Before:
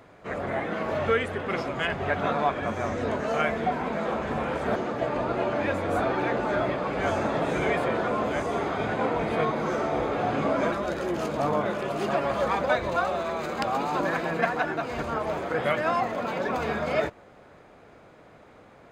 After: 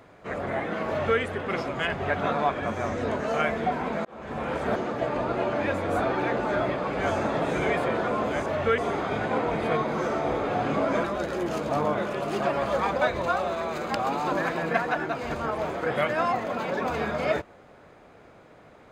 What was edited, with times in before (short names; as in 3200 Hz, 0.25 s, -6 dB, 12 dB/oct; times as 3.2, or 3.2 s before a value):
0.88–1.2 copy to 8.46
4.05–4.53 fade in